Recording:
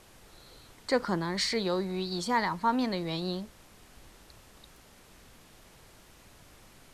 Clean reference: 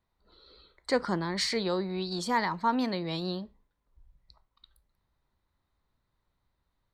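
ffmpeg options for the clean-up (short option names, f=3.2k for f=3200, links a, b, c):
-af "afftdn=nr=23:nf=-56"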